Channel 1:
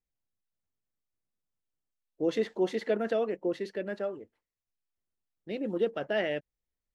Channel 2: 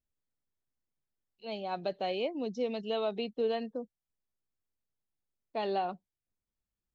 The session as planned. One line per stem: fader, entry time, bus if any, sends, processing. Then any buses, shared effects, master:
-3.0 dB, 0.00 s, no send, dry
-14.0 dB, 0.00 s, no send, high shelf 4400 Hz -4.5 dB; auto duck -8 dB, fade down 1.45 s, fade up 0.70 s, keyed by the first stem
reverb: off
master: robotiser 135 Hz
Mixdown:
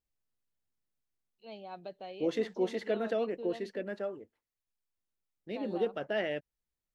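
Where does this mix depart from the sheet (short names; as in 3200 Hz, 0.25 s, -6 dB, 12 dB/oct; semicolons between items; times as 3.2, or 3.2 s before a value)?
stem 2 -14.0 dB -> -3.5 dB; master: missing robotiser 135 Hz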